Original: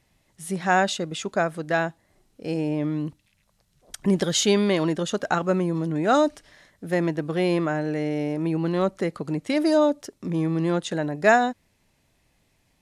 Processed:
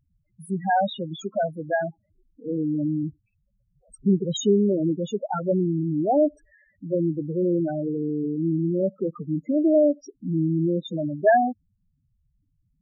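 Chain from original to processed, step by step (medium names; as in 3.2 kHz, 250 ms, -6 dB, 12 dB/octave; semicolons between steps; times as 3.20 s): loudest bins only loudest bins 4; trim +2 dB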